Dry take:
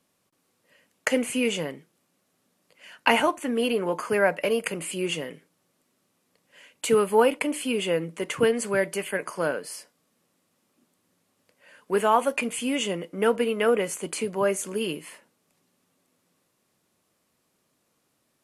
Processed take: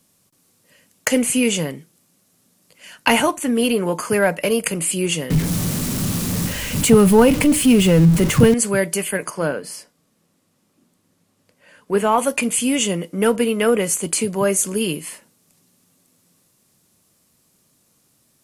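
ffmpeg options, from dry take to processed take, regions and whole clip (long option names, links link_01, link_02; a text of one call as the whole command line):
ffmpeg -i in.wav -filter_complex "[0:a]asettb=1/sr,asplit=3[link_01][link_02][link_03];[link_01]atrim=end=5.304[link_04];[link_02]atrim=start=5.3:end=8.54,asetpts=PTS-STARTPTS,afade=type=in:duration=0.004:curve=qsin,afade=type=out:start_time=3.236:duration=0.004:curve=qsin,aeval=exprs='val(0)+0.5*0.0355*sgn(val(0))':channel_layout=same,bass=frequency=250:gain=12,treble=frequency=4000:gain=-4[link_05];[link_03]atrim=start=8.536[link_06];[link_04][link_05]acrossfade=duration=0.004:curve1=hsin:curve2=qsin[link_07];[link_07][link_06]acrossfade=duration=0.004:curve1=qsin:curve2=hsin,asettb=1/sr,asplit=3[link_08][link_09][link_10];[link_08]atrim=end=9.304[link_11];[link_09]atrim=start=9.3:end=12.18,asetpts=PTS-STARTPTS,afade=type=in:duration=0.004:curve=qsin,afade=type=out:start_time=2.876:duration=0.004:curve=qsin,highshelf=frequency=4500:gain=-11,bandreject=frequency=60:width_type=h:width=6,bandreject=frequency=120:width_type=h:width=6,bandreject=frequency=180:width_type=h:width=6,bandreject=frequency=240:width_type=h:width=6[link_12];[link_10]atrim=start=12.176[link_13];[link_11][link_12]acrossfade=duration=0.004:curve1=hsin:curve2=qsin[link_14];[link_14][link_13]acrossfade=duration=0.004:curve1=qsin:curve2=hsin,bass=frequency=250:gain=9,treble=frequency=4000:gain=10,acontrast=26,volume=-1dB" out.wav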